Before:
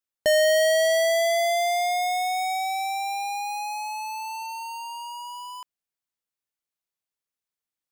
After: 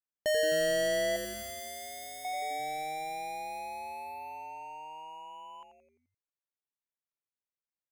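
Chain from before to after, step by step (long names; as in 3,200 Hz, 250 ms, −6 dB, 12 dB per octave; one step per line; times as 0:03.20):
adaptive Wiener filter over 9 samples
0:01.16–0:02.25: first-order pre-emphasis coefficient 0.8
echo with shifted repeats 86 ms, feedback 54%, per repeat −150 Hz, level −9.5 dB
level −9 dB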